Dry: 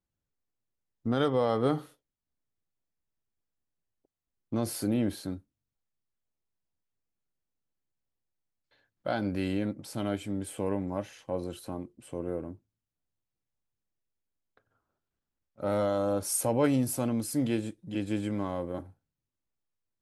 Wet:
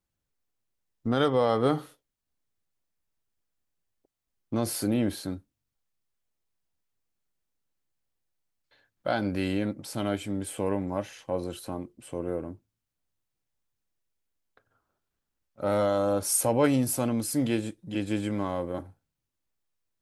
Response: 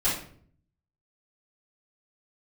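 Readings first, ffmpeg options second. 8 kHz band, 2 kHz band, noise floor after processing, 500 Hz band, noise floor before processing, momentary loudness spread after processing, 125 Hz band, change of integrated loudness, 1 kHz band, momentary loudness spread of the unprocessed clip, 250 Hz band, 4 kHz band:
+4.5 dB, +4.5 dB, -85 dBFS, +3.0 dB, under -85 dBFS, 13 LU, +1.5 dB, +2.5 dB, +4.0 dB, 13 LU, +2.0 dB, +4.5 dB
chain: -af "equalizer=f=160:w=0.32:g=-3,volume=1.68"

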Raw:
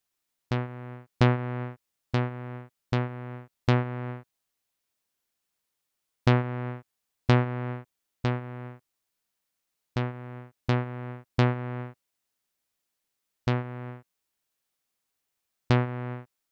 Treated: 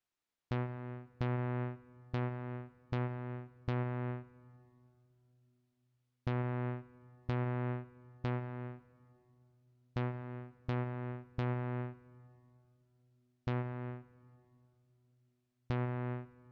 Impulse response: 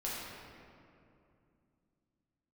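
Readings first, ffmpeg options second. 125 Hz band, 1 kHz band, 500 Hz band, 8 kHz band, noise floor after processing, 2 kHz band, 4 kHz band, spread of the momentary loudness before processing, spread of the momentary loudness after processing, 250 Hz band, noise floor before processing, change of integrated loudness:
-9.0 dB, -10.0 dB, -9.5 dB, no reading, -81 dBFS, -11.5 dB, -16.5 dB, 17 LU, 11 LU, -9.5 dB, -82 dBFS, -10.0 dB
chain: -filter_complex "[0:a]aemphasis=mode=reproduction:type=50fm,alimiter=limit=0.075:level=0:latency=1,asplit=2[s0][s1];[1:a]atrim=start_sample=2205[s2];[s1][s2]afir=irnorm=-1:irlink=0,volume=0.126[s3];[s0][s3]amix=inputs=2:normalize=0,volume=0.531"

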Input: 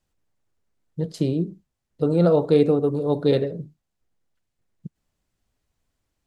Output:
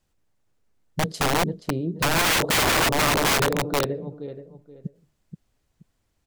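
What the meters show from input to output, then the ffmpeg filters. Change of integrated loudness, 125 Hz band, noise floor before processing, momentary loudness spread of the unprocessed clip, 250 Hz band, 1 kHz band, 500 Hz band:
0.0 dB, -3.0 dB, -80 dBFS, 14 LU, -5.0 dB, +12.0 dB, -5.5 dB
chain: -filter_complex "[0:a]asplit=2[s0][s1];[s1]adelay=477,lowpass=f=2700:p=1,volume=0.422,asplit=2[s2][s3];[s3]adelay=477,lowpass=f=2700:p=1,volume=0.25,asplit=2[s4][s5];[s5]adelay=477,lowpass=f=2700:p=1,volume=0.25[s6];[s0][s2][s4][s6]amix=inputs=4:normalize=0,aeval=exprs='(mod(8.91*val(0)+1,2)-1)/8.91':c=same,volume=1.5"

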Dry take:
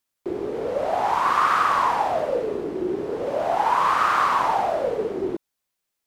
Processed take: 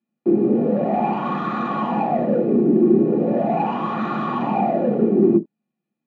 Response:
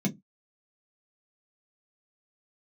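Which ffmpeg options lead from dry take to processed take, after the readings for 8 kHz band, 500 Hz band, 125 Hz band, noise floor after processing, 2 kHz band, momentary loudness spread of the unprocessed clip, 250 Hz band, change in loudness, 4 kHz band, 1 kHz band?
under -20 dB, +4.5 dB, +15.0 dB, -82 dBFS, -8.0 dB, 10 LU, +15.5 dB, +3.0 dB, no reading, -3.5 dB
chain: -filter_complex "[0:a]asoftclip=type=hard:threshold=0.0891,lowpass=2100[s0];[1:a]atrim=start_sample=2205,atrim=end_sample=4410,asetrate=48510,aresample=44100[s1];[s0][s1]afir=irnorm=-1:irlink=0,volume=0.668"

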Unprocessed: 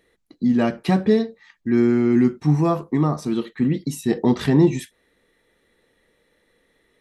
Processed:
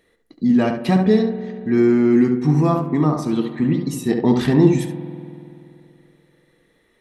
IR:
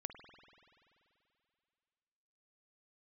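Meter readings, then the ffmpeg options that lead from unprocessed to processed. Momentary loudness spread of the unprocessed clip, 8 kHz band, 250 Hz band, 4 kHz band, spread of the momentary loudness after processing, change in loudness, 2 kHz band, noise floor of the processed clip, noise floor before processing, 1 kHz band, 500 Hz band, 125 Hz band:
8 LU, +1.0 dB, +2.5 dB, +1.5 dB, 9 LU, +2.5 dB, +2.0 dB, -62 dBFS, -66 dBFS, +2.5 dB, +2.5 dB, +2.5 dB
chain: -filter_complex "[0:a]asplit=2[s0][s1];[1:a]atrim=start_sample=2205,highshelf=f=2400:g=-10,adelay=70[s2];[s1][s2]afir=irnorm=-1:irlink=0,volume=0.944[s3];[s0][s3]amix=inputs=2:normalize=0,volume=1.12"

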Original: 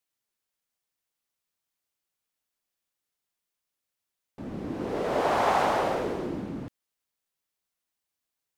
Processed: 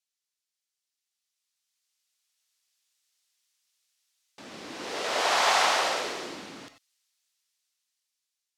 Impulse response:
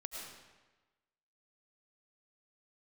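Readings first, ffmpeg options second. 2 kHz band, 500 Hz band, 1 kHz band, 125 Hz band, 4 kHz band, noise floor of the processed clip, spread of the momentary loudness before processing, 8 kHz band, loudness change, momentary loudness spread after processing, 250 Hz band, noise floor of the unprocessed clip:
+6.5 dB, -4.5 dB, 0.0 dB, -16.5 dB, +12.5 dB, under -85 dBFS, 16 LU, +13.5 dB, +2.5 dB, 20 LU, -10.5 dB, under -85 dBFS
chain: -filter_complex "[0:a]bandpass=f=5300:t=q:w=0.93:csg=0,dynaudnorm=f=530:g=7:m=3.98[s0];[1:a]atrim=start_sample=2205,atrim=end_sample=4410[s1];[s0][s1]afir=irnorm=-1:irlink=0,volume=2.37"

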